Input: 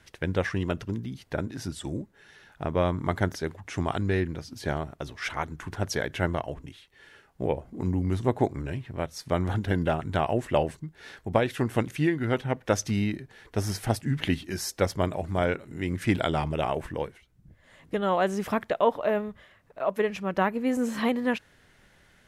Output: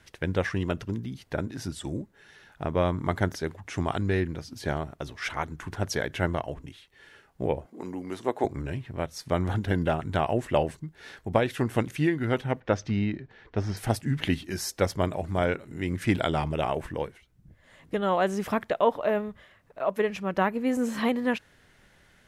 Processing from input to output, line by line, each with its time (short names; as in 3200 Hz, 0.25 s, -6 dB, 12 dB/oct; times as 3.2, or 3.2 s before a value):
7.66–8.45 HPF 350 Hz
12.6–13.77 air absorption 190 m